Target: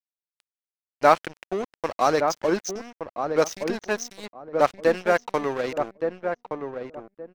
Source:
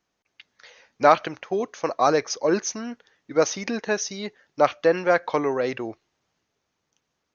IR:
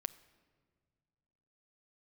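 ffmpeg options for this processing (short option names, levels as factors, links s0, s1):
-filter_complex "[0:a]aeval=exprs='sgn(val(0))*max(abs(val(0))-0.0266,0)':c=same,asplit=2[s0][s1];[s1]adelay=1170,lowpass=f=960:p=1,volume=0.562,asplit=2[s2][s3];[s3]adelay=1170,lowpass=f=960:p=1,volume=0.24,asplit=2[s4][s5];[s5]adelay=1170,lowpass=f=960:p=1,volume=0.24[s6];[s0][s2][s4][s6]amix=inputs=4:normalize=0"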